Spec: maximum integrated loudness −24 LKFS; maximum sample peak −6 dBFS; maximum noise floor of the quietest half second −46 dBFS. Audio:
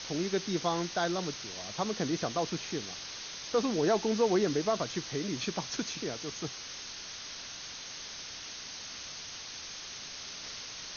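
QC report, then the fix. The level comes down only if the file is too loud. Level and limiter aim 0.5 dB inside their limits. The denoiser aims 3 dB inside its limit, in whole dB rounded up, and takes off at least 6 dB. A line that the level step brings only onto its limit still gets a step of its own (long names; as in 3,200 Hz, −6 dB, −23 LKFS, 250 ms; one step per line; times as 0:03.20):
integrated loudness −34.0 LKFS: in spec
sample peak −15.0 dBFS: in spec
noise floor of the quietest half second −44 dBFS: out of spec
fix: broadband denoise 6 dB, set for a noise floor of −44 dBFS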